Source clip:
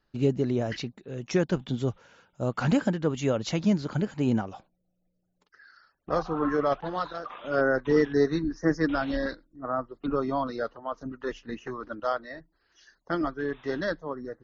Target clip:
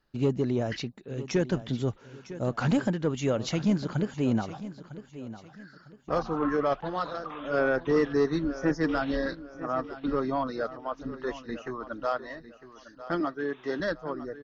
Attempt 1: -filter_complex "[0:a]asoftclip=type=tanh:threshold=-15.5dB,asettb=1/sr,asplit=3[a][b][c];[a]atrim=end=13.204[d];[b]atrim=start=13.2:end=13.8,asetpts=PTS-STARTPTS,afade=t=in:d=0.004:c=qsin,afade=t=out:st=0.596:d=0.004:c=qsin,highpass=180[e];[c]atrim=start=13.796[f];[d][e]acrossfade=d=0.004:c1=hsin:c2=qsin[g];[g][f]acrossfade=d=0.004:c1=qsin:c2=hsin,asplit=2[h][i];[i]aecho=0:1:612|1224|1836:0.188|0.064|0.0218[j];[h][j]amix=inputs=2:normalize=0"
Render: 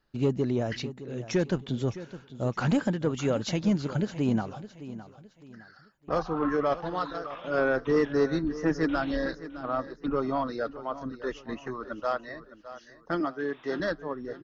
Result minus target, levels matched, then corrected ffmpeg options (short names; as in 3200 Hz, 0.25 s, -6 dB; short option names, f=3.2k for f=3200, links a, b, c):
echo 0.341 s early
-filter_complex "[0:a]asoftclip=type=tanh:threshold=-15.5dB,asettb=1/sr,asplit=3[a][b][c];[a]atrim=end=13.204[d];[b]atrim=start=13.2:end=13.8,asetpts=PTS-STARTPTS,afade=t=in:d=0.004:c=qsin,afade=t=out:st=0.596:d=0.004:c=qsin,highpass=180[e];[c]atrim=start=13.796[f];[d][e]acrossfade=d=0.004:c1=hsin:c2=qsin[g];[g][f]acrossfade=d=0.004:c1=qsin:c2=hsin,asplit=2[h][i];[i]aecho=0:1:953|1906|2859:0.188|0.064|0.0218[j];[h][j]amix=inputs=2:normalize=0"